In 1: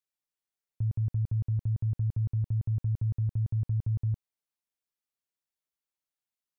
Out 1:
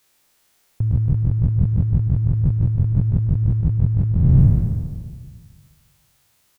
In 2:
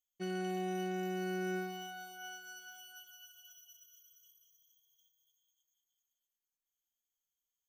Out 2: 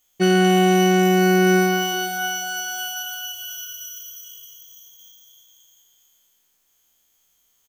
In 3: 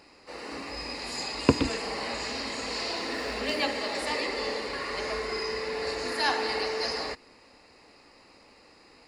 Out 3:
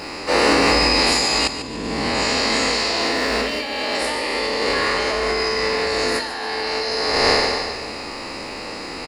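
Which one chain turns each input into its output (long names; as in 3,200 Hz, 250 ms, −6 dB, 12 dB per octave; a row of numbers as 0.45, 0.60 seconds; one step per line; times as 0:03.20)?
peak hold with a decay on every bin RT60 1.73 s
compressor whose output falls as the input rises −36 dBFS, ratio −1
repeating echo 145 ms, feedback 45%, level −11 dB
loudness normalisation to −19 LKFS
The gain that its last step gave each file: +19.0, +22.0, +13.5 decibels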